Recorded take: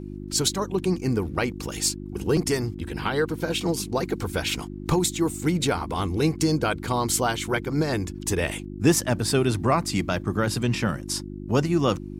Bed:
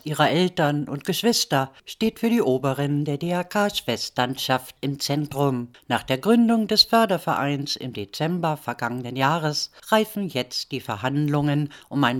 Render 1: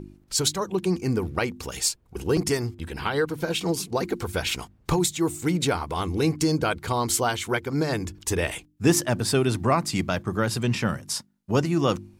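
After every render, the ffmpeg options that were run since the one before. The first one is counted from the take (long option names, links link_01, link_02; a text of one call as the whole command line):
ffmpeg -i in.wav -af "bandreject=frequency=50:width_type=h:width=4,bandreject=frequency=100:width_type=h:width=4,bandreject=frequency=150:width_type=h:width=4,bandreject=frequency=200:width_type=h:width=4,bandreject=frequency=250:width_type=h:width=4,bandreject=frequency=300:width_type=h:width=4,bandreject=frequency=350:width_type=h:width=4" out.wav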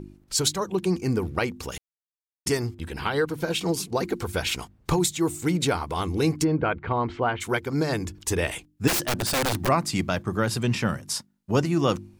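ffmpeg -i in.wav -filter_complex "[0:a]asplit=3[link_01][link_02][link_03];[link_01]afade=type=out:start_time=6.43:duration=0.02[link_04];[link_02]lowpass=frequency=2500:width=0.5412,lowpass=frequency=2500:width=1.3066,afade=type=in:start_time=6.43:duration=0.02,afade=type=out:start_time=7.4:duration=0.02[link_05];[link_03]afade=type=in:start_time=7.4:duration=0.02[link_06];[link_04][link_05][link_06]amix=inputs=3:normalize=0,asplit=3[link_07][link_08][link_09];[link_07]afade=type=out:start_time=8.87:duration=0.02[link_10];[link_08]aeval=exprs='(mod(8.41*val(0)+1,2)-1)/8.41':channel_layout=same,afade=type=in:start_time=8.87:duration=0.02,afade=type=out:start_time=9.67:duration=0.02[link_11];[link_09]afade=type=in:start_time=9.67:duration=0.02[link_12];[link_10][link_11][link_12]amix=inputs=3:normalize=0,asplit=3[link_13][link_14][link_15];[link_13]atrim=end=1.78,asetpts=PTS-STARTPTS,afade=type=out:start_time=1.776:duration=0.004:curve=hsin[link_16];[link_14]atrim=start=1.78:end=2.46,asetpts=PTS-STARTPTS,volume=0[link_17];[link_15]atrim=start=2.46,asetpts=PTS-STARTPTS,afade=type=in:duration=0.004:curve=hsin[link_18];[link_16][link_17][link_18]concat=n=3:v=0:a=1" out.wav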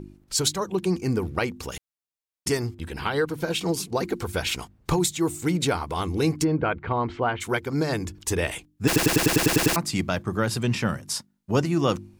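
ffmpeg -i in.wav -filter_complex "[0:a]asplit=10[link_01][link_02][link_03][link_04][link_05][link_06][link_07][link_08][link_09][link_10];[link_01]atrim=end=8.962[link_11];[link_02]atrim=start=8.858:end=8.962[link_12];[link_03]atrim=start=8.858:end=8.962[link_13];[link_04]atrim=start=8.858:end=8.962[link_14];[link_05]atrim=start=8.858:end=8.962[link_15];[link_06]atrim=start=8.858:end=8.962[link_16];[link_07]atrim=start=8.858:end=8.962[link_17];[link_08]atrim=start=8.858:end=8.962[link_18];[link_09]atrim=start=8.858:end=8.962[link_19];[link_10]atrim=start=9.758[link_20];[link_11][link_12]acrossfade=duration=0.004:curve1=hsin:curve2=hsin[link_21];[link_21][link_13]acrossfade=duration=0.004:curve1=hsin:curve2=hsin[link_22];[link_22][link_14]acrossfade=duration=0.004:curve1=hsin:curve2=hsin[link_23];[link_23][link_15]acrossfade=duration=0.004:curve1=hsin:curve2=hsin[link_24];[link_24][link_16]acrossfade=duration=0.004:curve1=hsin:curve2=hsin[link_25];[link_25][link_17]acrossfade=duration=0.004:curve1=hsin:curve2=hsin[link_26];[link_26][link_18]acrossfade=duration=0.004:curve1=hsin:curve2=hsin[link_27];[link_27][link_19]acrossfade=duration=0.004:curve1=hsin:curve2=hsin[link_28];[link_28][link_20]acrossfade=duration=0.004:curve1=hsin:curve2=hsin" out.wav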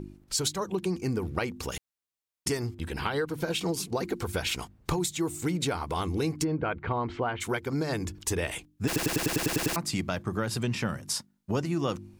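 ffmpeg -i in.wav -af "acompressor=threshold=-27dB:ratio=3" out.wav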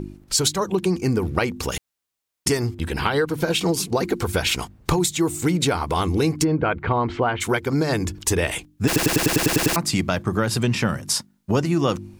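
ffmpeg -i in.wav -af "volume=8.5dB" out.wav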